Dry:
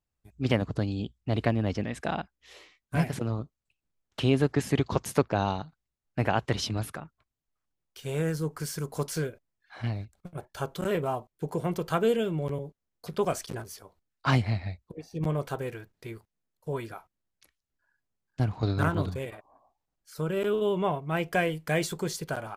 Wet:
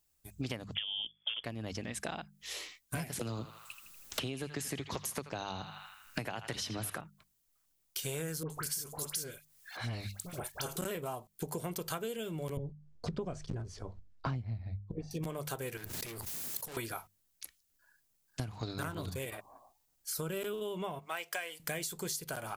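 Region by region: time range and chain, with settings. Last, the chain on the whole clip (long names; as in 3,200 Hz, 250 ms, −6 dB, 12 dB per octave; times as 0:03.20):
0:00.75–0:01.44: mid-hump overdrive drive 16 dB, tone 1,600 Hz, clips at −13.5 dBFS + voice inversion scrambler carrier 3,400 Hz + multiband upward and downward compressor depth 70%
0:03.19–0:07.01: feedback echo with a band-pass in the loop 80 ms, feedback 58%, band-pass 1,900 Hz, level −10 dB + multiband upward and downward compressor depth 70%
0:08.43–0:10.77: transient designer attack −11 dB, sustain +5 dB + all-pass dispersion highs, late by 70 ms, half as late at 1,600 Hz + one half of a high-frequency compander encoder only
0:12.57–0:15.11: low-pass filter 7,500 Hz 24 dB per octave + spectral tilt −4.5 dB per octave
0:15.77–0:16.77: high-pass filter 69 Hz 24 dB per octave + tube saturation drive 47 dB, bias 0.55 + envelope flattener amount 100%
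0:20.99–0:21.60: high-pass filter 700 Hz + parametric band 12,000 Hz −7 dB 0.46 octaves
whole clip: first-order pre-emphasis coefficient 0.8; mains-hum notches 50/100/150/200 Hz; downward compressor 16 to 1, threshold −51 dBFS; level +16.5 dB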